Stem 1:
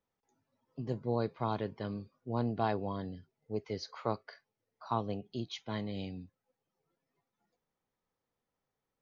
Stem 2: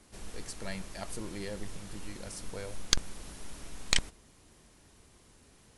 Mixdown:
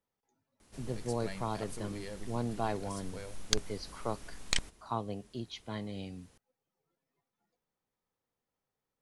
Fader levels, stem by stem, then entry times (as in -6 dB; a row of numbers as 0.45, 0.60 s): -2.0, -4.0 dB; 0.00, 0.60 s